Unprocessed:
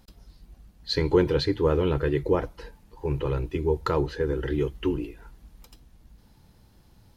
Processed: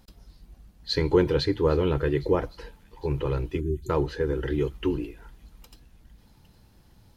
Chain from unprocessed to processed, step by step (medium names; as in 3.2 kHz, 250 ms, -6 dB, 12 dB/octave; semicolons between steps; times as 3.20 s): spectral selection erased 3.61–3.90 s, 400–6000 Hz; feedback echo behind a high-pass 810 ms, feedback 57%, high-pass 3 kHz, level -20 dB